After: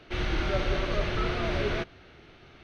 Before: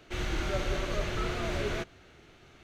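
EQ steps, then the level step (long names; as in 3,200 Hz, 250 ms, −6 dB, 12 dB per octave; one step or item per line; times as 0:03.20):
Savitzky-Golay smoothing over 15 samples
+3.5 dB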